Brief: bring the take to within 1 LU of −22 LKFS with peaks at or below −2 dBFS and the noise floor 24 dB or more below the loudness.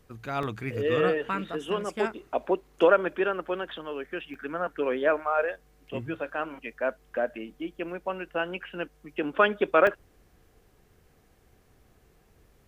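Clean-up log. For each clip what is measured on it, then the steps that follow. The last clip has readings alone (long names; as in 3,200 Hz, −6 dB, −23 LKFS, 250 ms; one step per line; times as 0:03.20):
number of dropouts 3; longest dropout 2.5 ms; integrated loudness −28.5 LKFS; sample peak −7.5 dBFS; target loudness −22.0 LKFS
→ repair the gap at 0:00.43/0:04.34/0:09.87, 2.5 ms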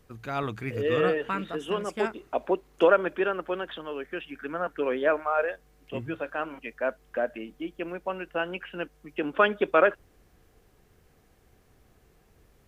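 number of dropouts 0; integrated loudness −28.5 LKFS; sample peak −7.5 dBFS; target loudness −22.0 LKFS
→ level +6.5 dB
brickwall limiter −2 dBFS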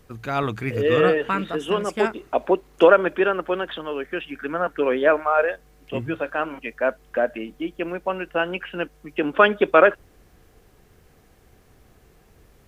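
integrated loudness −22.0 LKFS; sample peak −2.0 dBFS; background noise floor −56 dBFS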